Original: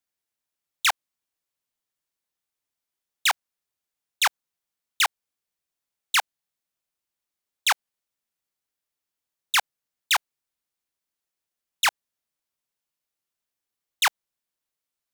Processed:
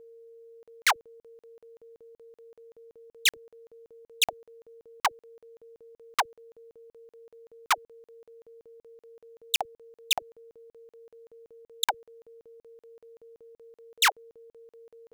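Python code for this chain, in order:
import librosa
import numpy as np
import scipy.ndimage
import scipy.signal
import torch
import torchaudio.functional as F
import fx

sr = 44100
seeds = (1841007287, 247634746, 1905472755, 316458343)

y = fx.dispersion(x, sr, late='lows', ms=57.0, hz=460.0)
y = y + 10.0 ** (-48.0 / 20.0) * np.sin(2.0 * np.pi * 460.0 * np.arange(len(y)) / sr)
y = fx.buffer_crackle(y, sr, first_s=0.63, period_s=0.19, block=2048, kind='zero')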